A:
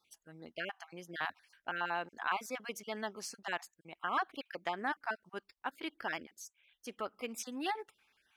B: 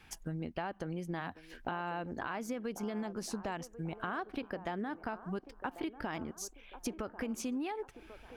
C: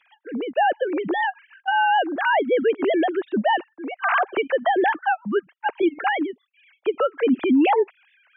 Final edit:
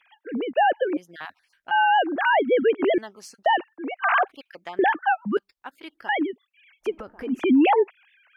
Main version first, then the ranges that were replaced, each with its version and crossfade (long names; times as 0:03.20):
C
0:00.97–0:01.71: punch in from A
0:02.98–0:03.46: punch in from A
0:04.28–0:04.79: punch in from A
0:05.37–0:06.09: punch in from A
0:06.92–0:07.33: punch in from B, crossfade 0.24 s